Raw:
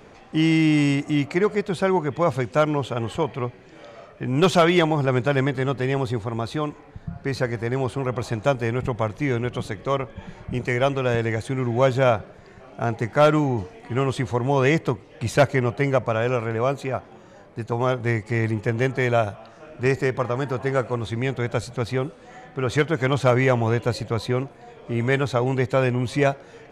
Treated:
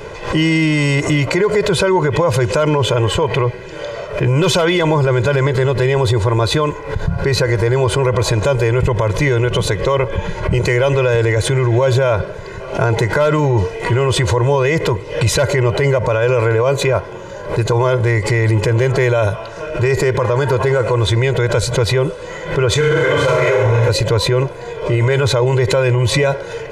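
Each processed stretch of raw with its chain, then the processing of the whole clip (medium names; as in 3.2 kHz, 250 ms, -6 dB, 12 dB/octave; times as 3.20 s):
22.74–23.89 s: flutter echo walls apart 6 m, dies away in 1.2 s + three-phase chorus
whole clip: comb 2 ms, depth 92%; loudness maximiser +19.5 dB; swell ahead of each attack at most 110 dB/s; trim -5.5 dB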